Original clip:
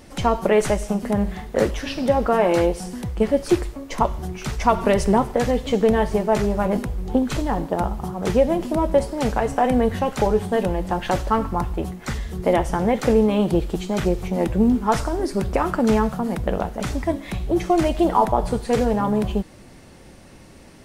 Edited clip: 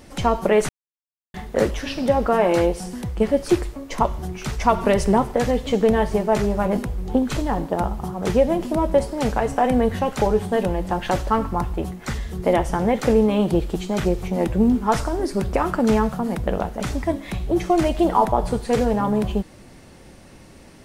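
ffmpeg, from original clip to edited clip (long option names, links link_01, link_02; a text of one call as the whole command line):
ffmpeg -i in.wav -filter_complex "[0:a]asplit=3[link_01][link_02][link_03];[link_01]atrim=end=0.69,asetpts=PTS-STARTPTS,afade=type=out:start_time=0.686:duration=0.004:curve=hsin[link_04];[link_02]atrim=start=0.69:end=1.34,asetpts=PTS-STARTPTS,volume=0[link_05];[link_03]atrim=start=1.34,asetpts=PTS-STARTPTS,afade=type=in:duration=0.004:curve=hsin[link_06];[link_04][link_05][link_06]concat=n=3:v=0:a=1" out.wav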